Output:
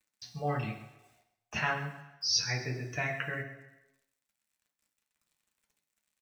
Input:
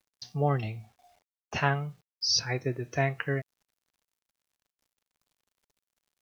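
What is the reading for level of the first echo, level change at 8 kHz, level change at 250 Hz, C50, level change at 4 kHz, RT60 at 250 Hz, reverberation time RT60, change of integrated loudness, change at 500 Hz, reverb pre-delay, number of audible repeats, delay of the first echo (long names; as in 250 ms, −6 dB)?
−15.0 dB, can't be measured, −6.0 dB, 8.5 dB, −2.0 dB, 0.90 s, 0.95 s, −3.5 dB, −7.0 dB, 7 ms, 1, 132 ms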